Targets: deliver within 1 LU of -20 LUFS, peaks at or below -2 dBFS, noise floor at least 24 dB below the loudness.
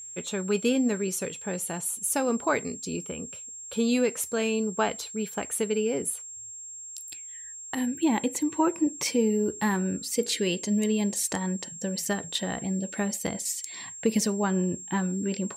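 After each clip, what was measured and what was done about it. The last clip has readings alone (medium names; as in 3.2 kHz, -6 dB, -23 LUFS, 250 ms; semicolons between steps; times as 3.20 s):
steady tone 7.5 kHz; tone level -39 dBFS; loudness -28.0 LUFS; peak level -11.5 dBFS; loudness target -20.0 LUFS
-> band-stop 7.5 kHz, Q 30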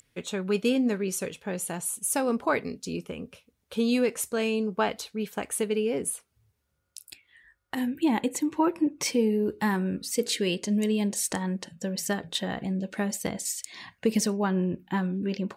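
steady tone not found; loudness -28.5 LUFS; peak level -12.0 dBFS; loudness target -20.0 LUFS
-> trim +8.5 dB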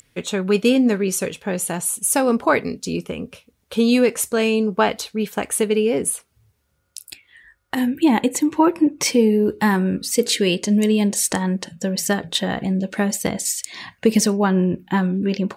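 loudness -20.0 LUFS; peak level -3.5 dBFS; noise floor -67 dBFS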